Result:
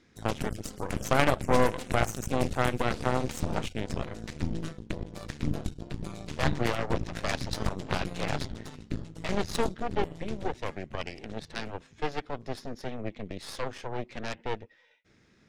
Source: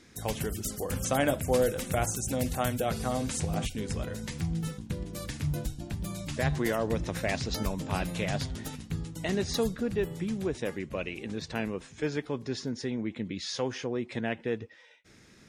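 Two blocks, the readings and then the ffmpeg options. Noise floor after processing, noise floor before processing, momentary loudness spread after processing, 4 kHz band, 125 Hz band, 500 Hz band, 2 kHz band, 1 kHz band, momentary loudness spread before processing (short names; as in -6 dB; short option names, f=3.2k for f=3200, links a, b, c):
-62 dBFS, -56 dBFS, 12 LU, 0.0 dB, -1.0 dB, -1.0 dB, +2.0 dB, +4.0 dB, 8 LU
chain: -af "adynamicsmooth=sensitivity=3:basefreq=5.9k,aeval=exprs='0.282*(cos(1*acos(clip(val(0)/0.282,-1,1)))-cos(1*PI/2))+0.0562*(cos(3*acos(clip(val(0)/0.282,-1,1)))-cos(3*PI/2))+0.00631*(cos(7*acos(clip(val(0)/0.282,-1,1)))-cos(7*PI/2))+0.0282*(cos(8*acos(clip(val(0)/0.282,-1,1)))-cos(8*PI/2))':c=same,volume=6.5dB"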